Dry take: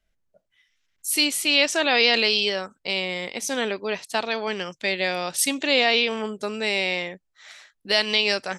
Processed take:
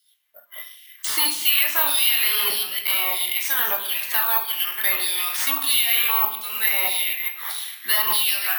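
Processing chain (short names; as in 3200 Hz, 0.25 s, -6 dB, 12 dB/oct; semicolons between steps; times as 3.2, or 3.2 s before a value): reverse delay 0.155 s, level -11 dB; ten-band EQ 125 Hz -4 dB, 500 Hz -11 dB, 2000 Hz -12 dB, 4000 Hz -4 dB; overdrive pedal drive 20 dB, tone 1700 Hz, clips at -10 dBFS; LFO high-pass saw down 1.6 Hz 930–4600 Hz; reverb RT60 0.60 s, pre-delay 19 ms, DRR 0.5 dB; spectral noise reduction 8 dB; bell 170 Hz +10.5 dB 2.1 oct; careless resampling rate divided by 3×, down none, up zero stuff; three-band squash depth 70%; gain -8.5 dB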